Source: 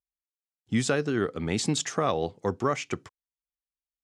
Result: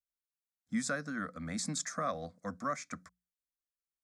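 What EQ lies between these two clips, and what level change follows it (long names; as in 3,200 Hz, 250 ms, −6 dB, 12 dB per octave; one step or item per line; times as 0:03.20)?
parametric band 390 Hz −14 dB 0.8 octaves
mains-hum notches 60/120/180 Hz
phaser with its sweep stopped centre 580 Hz, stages 8
−3.5 dB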